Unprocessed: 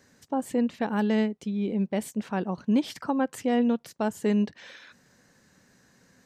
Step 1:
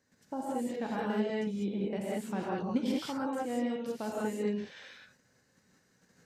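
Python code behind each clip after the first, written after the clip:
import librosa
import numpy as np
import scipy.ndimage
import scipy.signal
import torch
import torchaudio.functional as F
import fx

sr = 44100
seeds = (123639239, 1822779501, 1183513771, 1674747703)

y = fx.level_steps(x, sr, step_db=10)
y = fx.rev_gated(y, sr, seeds[0], gate_ms=220, shape='rising', drr_db=-5.0)
y = F.gain(torch.from_numpy(y), -6.0).numpy()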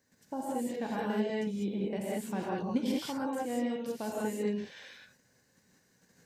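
y = fx.high_shelf(x, sr, hz=10000.0, db=9.0)
y = fx.notch(y, sr, hz=1300.0, q=10.0)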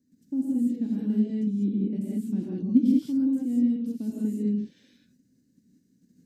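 y = fx.curve_eq(x, sr, hz=(120.0, 270.0, 470.0, 870.0, 4000.0, 14000.0), db=(0, 13, -10, -25, -10, -7))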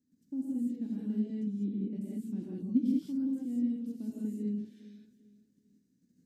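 y = fx.echo_feedback(x, sr, ms=401, feedback_pct=34, wet_db=-18)
y = F.gain(torch.from_numpy(y), -8.0).numpy()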